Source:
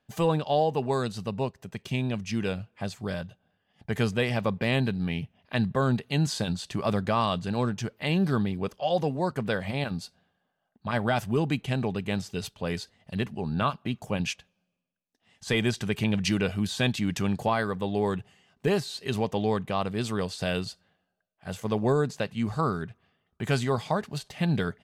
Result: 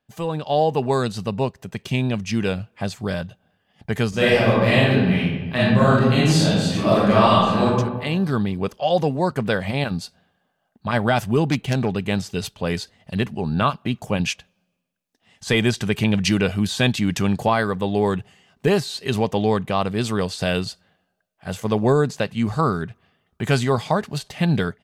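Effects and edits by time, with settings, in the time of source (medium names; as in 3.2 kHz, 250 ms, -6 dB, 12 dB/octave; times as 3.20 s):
4.09–7.65 s: reverb throw, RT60 1.2 s, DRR -9.5 dB
11.51–11.95 s: self-modulated delay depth 0.11 ms
whole clip: level rider gain up to 10 dB; trim -3 dB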